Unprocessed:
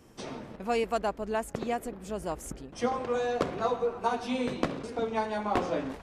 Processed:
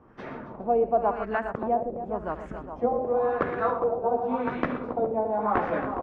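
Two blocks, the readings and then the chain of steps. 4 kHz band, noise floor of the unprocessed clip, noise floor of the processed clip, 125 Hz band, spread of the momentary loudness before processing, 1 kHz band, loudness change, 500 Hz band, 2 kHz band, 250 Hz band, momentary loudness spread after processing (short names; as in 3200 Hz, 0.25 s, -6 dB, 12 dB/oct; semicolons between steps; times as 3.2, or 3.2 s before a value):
under -10 dB, -50 dBFS, -42 dBFS, +1.5 dB, 9 LU, +5.0 dB, +4.5 dB, +5.0 dB, +2.5 dB, +2.0 dB, 10 LU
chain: tapped delay 72/119/274/412 ms -15/-12.5/-10/-9.5 dB; LFO low-pass sine 0.92 Hz 600–1800 Hz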